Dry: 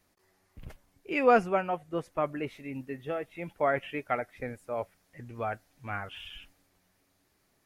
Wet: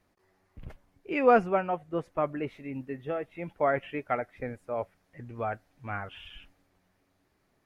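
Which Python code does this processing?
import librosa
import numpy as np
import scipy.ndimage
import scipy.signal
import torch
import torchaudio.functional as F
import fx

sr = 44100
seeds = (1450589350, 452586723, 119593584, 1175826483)

y = fx.high_shelf(x, sr, hz=3700.0, db=-12.0)
y = y * librosa.db_to_amplitude(1.5)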